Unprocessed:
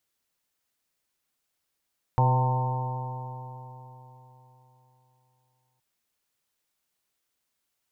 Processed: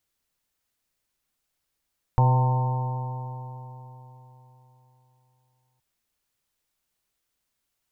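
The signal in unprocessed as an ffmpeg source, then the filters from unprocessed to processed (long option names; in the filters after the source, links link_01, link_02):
-f lavfi -i "aevalsrc='0.112*pow(10,-3*t/3.81)*sin(2*PI*125.09*t)+0.0141*pow(10,-3*t/3.81)*sin(2*PI*250.75*t)+0.0133*pow(10,-3*t/3.81)*sin(2*PI*377.52*t)+0.0282*pow(10,-3*t/3.81)*sin(2*PI*505.96*t)+0.0141*pow(10,-3*t/3.81)*sin(2*PI*636.61*t)+0.0376*pow(10,-3*t/3.81)*sin(2*PI*769.98*t)+0.0708*pow(10,-3*t/3.81)*sin(2*PI*906.59*t)+0.02*pow(10,-3*t/3.81)*sin(2*PI*1046.9*t)':duration=3.62:sample_rate=44100"
-af "lowshelf=frequency=82:gain=12"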